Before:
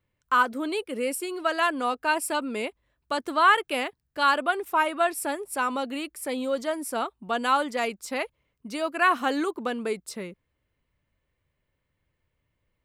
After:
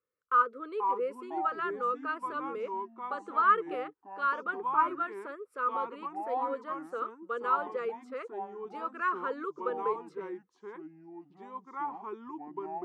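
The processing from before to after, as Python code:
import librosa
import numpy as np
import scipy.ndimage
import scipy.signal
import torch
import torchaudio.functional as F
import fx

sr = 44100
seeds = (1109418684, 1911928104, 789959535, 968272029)

y = fx.double_bandpass(x, sr, hz=770.0, octaves=1.4)
y = fx.wow_flutter(y, sr, seeds[0], rate_hz=2.1, depth_cents=20.0)
y = fx.echo_pitch(y, sr, ms=402, semitones=-4, count=2, db_per_echo=-6.0)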